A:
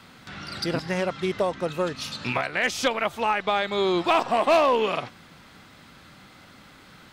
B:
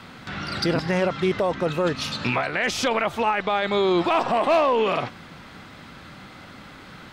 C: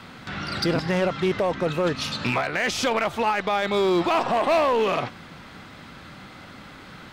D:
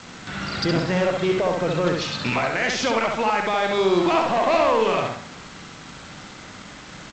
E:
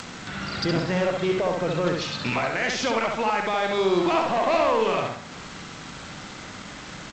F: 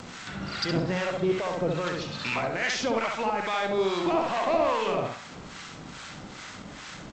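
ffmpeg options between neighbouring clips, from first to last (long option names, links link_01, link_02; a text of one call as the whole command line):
ffmpeg -i in.wav -af "highshelf=frequency=5100:gain=-9,alimiter=limit=-21dB:level=0:latency=1:release=10,volume=7.5dB" out.wav
ffmpeg -i in.wav -af "asoftclip=type=hard:threshold=-16.5dB" out.wav
ffmpeg -i in.wav -filter_complex "[0:a]aresample=16000,acrusher=bits=6:mix=0:aa=0.000001,aresample=44100,asplit=2[link_01][link_02];[link_02]adelay=67,lowpass=frequency=4900:poles=1,volume=-3dB,asplit=2[link_03][link_04];[link_04]adelay=67,lowpass=frequency=4900:poles=1,volume=0.4,asplit=2[link_05][link_06];[link_06]adelay=67,lowpass=frequency=4900:poles=1,volume=0.4,asplit=2[link_07][link_08];[link_08]adelay=67,lowpass=frequency=4900:poles=1,volume=0.4,asplit=2[link_09][link_10];[link_10]adelay=67,lowpass=frequency=4900:poles=1,volume=0.4[link_11];[link_01][link_03][link_05][link_07][link_09][link_11]amix=inputs=6:normalize=0" out.wav
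ffmpeg -i in.wav -af "acompressor=mode=upward:threshold=-29dB:ratio=2.5,volume=-2.5dB" out.wav
ffmpeg -i in.wav -filter_complex "[0:a]acrossover=split=850[link_01][link_02];[link_01]aeval=exprs='val(0)*(1-0.7/2+0.7/2*cos(2*PI*2.4*n/s))':channel_layout=same[link_03];[link_02]aeval=exprs='val(0)*(1-0.7/2-0.7/2*cos(2*PI*2.4*n/s))':channel_layout=same[link_04];[link_03][link_04]amix=inputs=2:normalize=0" out.wav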